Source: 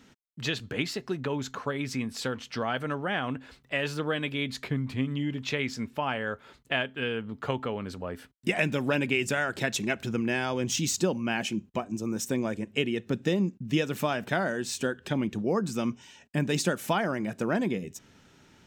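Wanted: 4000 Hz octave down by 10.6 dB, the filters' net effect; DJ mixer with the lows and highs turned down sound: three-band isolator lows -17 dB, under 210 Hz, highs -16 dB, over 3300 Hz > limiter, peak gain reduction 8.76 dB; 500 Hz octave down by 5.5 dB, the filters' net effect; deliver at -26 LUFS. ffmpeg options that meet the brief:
-filter_complex "[0:a]acrossover=split=210 3300:gain=0.141 1 0.158[a][b][c];[a][b][c]amix=inputs=3:normalize=0,equalizer=f=500:t=o:g=-6.5,equalizer=f=4k:t=o:g=-8.5,volume=11.5dB,alimiter=limit=-13.5dB:level=0:latency=1"

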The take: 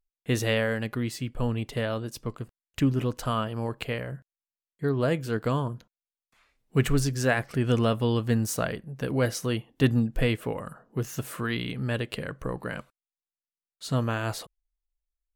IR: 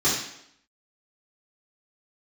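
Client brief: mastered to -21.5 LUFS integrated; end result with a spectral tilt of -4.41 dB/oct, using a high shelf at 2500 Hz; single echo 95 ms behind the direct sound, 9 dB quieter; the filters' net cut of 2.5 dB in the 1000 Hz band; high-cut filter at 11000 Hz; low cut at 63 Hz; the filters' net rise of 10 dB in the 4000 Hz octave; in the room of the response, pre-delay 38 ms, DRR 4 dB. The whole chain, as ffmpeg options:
-filter_complex "[0:a]highpass=63,lowpass=11k,equalizer=f=1k:t=o:g=-5.5,highshelf=f=2.5k:g=7,equalizer=f=4k:t=o:g=8,aecho=1:1:95:0.355,asplit=2[a][b];[1:a]atrim=start_sample=2205,adelay=38[c];[b][c]afir=irnorm=-1:irlink=0,volume=-18.5dB[d];[a][d]amix=inputs=2:normalize=0,volume=3dB"

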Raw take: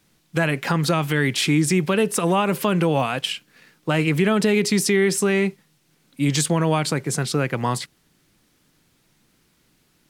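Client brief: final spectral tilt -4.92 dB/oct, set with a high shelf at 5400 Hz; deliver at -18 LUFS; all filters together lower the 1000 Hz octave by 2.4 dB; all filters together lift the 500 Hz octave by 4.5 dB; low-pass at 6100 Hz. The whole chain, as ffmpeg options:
-af "lowpass=6.1k,equalizer=f=500:t=o:g=7,equalizer=f=1k:t=o:g=-6,highshelf=f=5.4k:g=8.5,volume=1dB"

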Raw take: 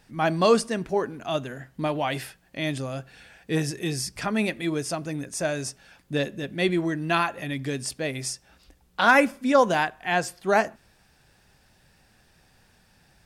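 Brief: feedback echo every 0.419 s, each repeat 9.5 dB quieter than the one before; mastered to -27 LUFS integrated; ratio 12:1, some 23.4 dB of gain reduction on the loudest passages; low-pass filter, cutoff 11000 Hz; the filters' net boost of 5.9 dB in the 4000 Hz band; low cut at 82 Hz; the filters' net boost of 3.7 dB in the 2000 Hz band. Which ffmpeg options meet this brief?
-af "highpass=82,lowpass=11k,equalizer=f=2k:t=o:g=3.5,equalizer=f=4k:t=o:g=6.5,acompressor=threshold=-35dB:ratio=12,aecho=1:1:419|838|1257|1676:0.335|0.111|0.0365|0.012,volume=12dB"

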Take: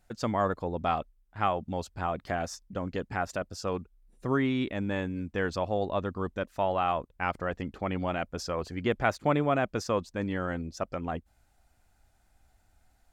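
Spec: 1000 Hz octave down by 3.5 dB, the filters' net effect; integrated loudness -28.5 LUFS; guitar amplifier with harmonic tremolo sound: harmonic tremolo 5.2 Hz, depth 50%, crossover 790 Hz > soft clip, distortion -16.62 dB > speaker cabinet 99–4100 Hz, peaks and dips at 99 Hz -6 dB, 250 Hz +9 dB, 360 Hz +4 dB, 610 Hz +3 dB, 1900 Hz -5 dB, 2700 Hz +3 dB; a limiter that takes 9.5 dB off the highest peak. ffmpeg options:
-filter_complex "[0:a]equalizer=f=1k:t=o:g=-6,alimiter=limit=-23.5dB:level=0:latency=1,acrossover=split=790[a][b];[a]aeval=exprs='val(0)*(1-0.5/2+0.5/2*cos(2*PI*5.2*n/s))':c=same[c];[b]aeval=exprs='val(0)*(1-0.5/2-0.5/2*cos(2*PI*5.2*n/s))':c=same[d];[c][d]amix=inputs=2:normalize=0,asoftclip=threshold=-28.5dB,highpass=99,equalizer=f=99:t=q:w=4:g=-6,equalizer=f=250:t=q:w=4:g=9,equalizer=f=360:t=q:w=4:g=4,equalizer=f=610:t=q:w=4:g=3,equalizer=f=1.9k:t=q:w=4:g=-5,equalizer=f=2.7k:t=q:w=4:g=3,lowpass=f=4.1k:w=0.5412,lowpass=f=4.1k:w=1.3066,volume=8.5dB"

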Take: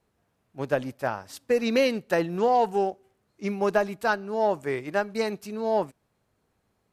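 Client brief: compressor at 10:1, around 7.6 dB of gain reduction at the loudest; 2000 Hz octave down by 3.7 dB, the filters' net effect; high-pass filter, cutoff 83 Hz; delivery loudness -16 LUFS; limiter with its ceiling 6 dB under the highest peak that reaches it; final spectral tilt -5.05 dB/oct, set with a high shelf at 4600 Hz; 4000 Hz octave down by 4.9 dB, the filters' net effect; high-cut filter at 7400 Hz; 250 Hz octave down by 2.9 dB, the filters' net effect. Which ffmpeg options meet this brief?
-af "highpass=83,lowpass=7.4k,equalizer=f=250:t=o:g=-3.5,equalizer=f=2k:t=o:g=-4.5,equalizer=f=4k:t=o:g=-8,highshelf=f=4.6k:g=7,acompressor=threshold=-26dB:ratio=10,volume=18.5dB,alimiter=limit=-4.5dB:level=0:latency=1"

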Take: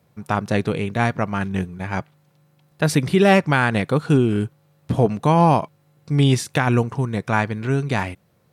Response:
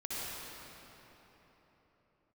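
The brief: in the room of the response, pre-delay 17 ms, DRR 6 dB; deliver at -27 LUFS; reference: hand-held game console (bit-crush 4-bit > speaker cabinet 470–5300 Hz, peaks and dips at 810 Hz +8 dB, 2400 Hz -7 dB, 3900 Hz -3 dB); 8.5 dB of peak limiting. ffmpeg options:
-filter_complex "[0:a]alimiter=limit=-13dB:level=0:latency=1,asplit=2[a][b];[1:a]atrim=start_sample=2205,adelay=17[c];[b][c]afir=irnorm=-1:irlink=0,volume=-10dB[d];[a][d]amix=inputs=2:normalize=0,acrusher=bits=3:mix=0:aa=0.000001,highpass=470,equalizer=f=810:t=q:w=4:g=8,equalizer=f=2.4k:t=q:w=4:g=-7,equalizer=f=3.9k:t=q:w=4:g=-3,lowpass=f=5.3k:w=0.5412,lowpass=f=5.3k:w=1.3066,volume=-1.5dB"

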